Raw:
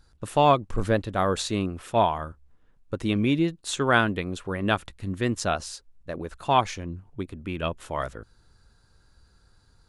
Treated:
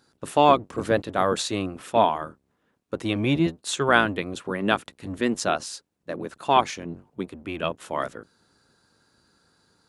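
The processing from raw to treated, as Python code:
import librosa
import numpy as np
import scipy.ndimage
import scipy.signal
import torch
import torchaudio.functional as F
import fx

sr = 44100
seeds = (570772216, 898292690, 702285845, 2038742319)

y = fx.octave_divider(x, sr, octaves=1, level_db=0.0)
y = scipy.signal.sosfilt(scipy.signal.butter(2, 210.0, 'highpass', fs=sr, output='sos'), y)
y = F.gain(torch.from_numpy(y), 2.0).numpy()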